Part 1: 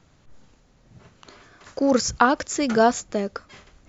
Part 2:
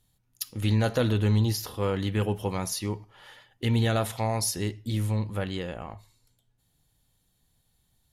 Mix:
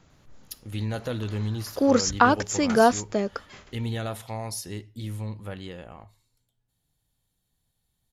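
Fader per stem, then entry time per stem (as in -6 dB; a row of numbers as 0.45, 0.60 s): -0.5, -6.0 dB; 0.00, 0.10 s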